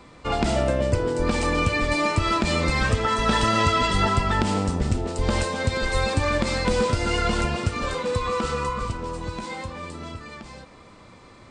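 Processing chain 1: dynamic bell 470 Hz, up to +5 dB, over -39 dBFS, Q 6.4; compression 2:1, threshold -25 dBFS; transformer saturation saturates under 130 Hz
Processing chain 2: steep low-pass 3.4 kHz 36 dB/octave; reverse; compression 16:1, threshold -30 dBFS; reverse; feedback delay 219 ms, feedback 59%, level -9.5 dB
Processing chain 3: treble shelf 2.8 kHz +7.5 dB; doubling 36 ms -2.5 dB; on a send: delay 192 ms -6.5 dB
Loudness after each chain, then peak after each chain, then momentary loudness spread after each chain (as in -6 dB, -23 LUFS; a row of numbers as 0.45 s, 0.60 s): -27.5 LUFS, -34.0 LUFS, -19.0 LUFS; -14.0 dBFS, -21.0 dBFS, -4.5 dBFS; 9 LU, 5 LU, 13 LU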